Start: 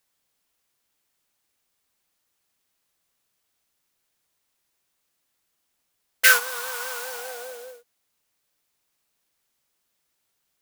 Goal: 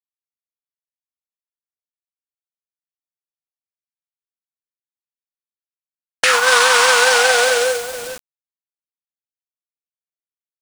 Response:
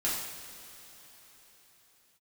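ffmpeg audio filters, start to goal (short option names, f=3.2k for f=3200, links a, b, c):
-filter_complex "[0:a]acompressor=threshold=-24dB:ratio=5,afftfilt=real='re*lt(hypot(re,im),0.178)':imag='im*lt(hypot(re,im),0.178)':win_size=1024:overlap=0.75,asplit=2[a][b];[b]aecho=0:1:432:0.106[c];[a][c]amix=inputs=2:normalize=0,aresample=22050,aresample=44100,acrossover=split=1100|2400|5300[d][e][f][g];[d]acompressor=threshold=-48dB:ratio=4[h];[e]acompressor=threshold=-46dB:ratio=4[i];[f]acompressor=threshold=-49dB:ratio=4[j];[g]acompressor=threshold=-56dB:ratio=4[k];[h][i][j][k]amix=inputs=4:normalize=0,tremolo=f=22:d=0.182,acrusher=bits=9:mix=0:aa=0.000001,alimiter=level_in=31.5dB:limit=-1dB:release=50:level=0:latency=1,volume=-1dB"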